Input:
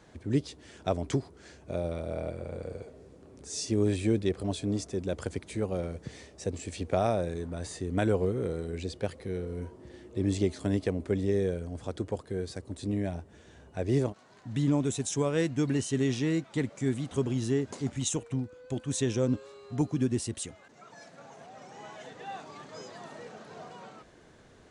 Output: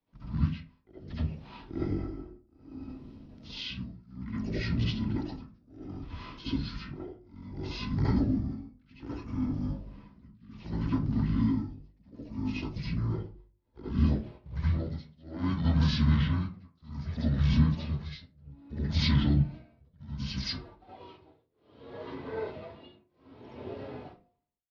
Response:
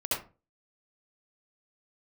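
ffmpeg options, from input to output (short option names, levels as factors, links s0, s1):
-filter_complex "[0:a]agate=range=0.0708:threshold=0.00251:ratio=16:detection=peak,tremolo=f=0.63:d=1,adynamicequalizer=threshold=0.00224:dfrequency=100:dqfactor=5.6:tfrequency=100:tqfactor=5.6:attack=5:release=100:ratio=0.375:range=1.5:mode=cutabove:tftype=bell,acrossover=split=370|2900[s0][s1][s2];[s1]alimiter=level_in=1.88:limit=0.0631:level=0:latency=1:release=284,volume=0.531[s3];[s0][s3][s2]amix=inputs=3:normalize=0,asplit=3[s4][s5][s6];[s5]asetrate=35002,aresample=44100,atempo=1.25992,volume=0.2[s7];[s6]asetrate=52444,aresample=44100,atempo=0.840896,volume=0.251[s8];[s4][s7][s8]amix=inputs=3:normalize=0,bandreject=f=90.69:t=h:w=4,bandreject=f=181.38:t=h:w=4,bandreject=f=272.07:t=h:w=4,bandreject=f=362.76:t=h:w=4,bandreject=f=453.45:t=h:w=4,bandreject=f=544.14:t=h:w=4,bandreject=f=634.83:t=h:w=4,bandreject=f=725.52:t=h:w=4,bandreject=f=816.21:t=h:w=4,bandreject=f=906.9:t=h:w=4,bandreject=f=997.59:t=h:w=4,bandreject=f=1088.28:t=h:w=4,bandreject=f=1178.97:t=h:w=4,bandreject=f=1269.66:t=h:w=4,asetrate=24750,aresample=44100,atempo=1.7818[s9];[1:a]atrim=start_sample=2205[s10];[s9][s10]afir=irnorm=-1:irlink=0,volume=0.841"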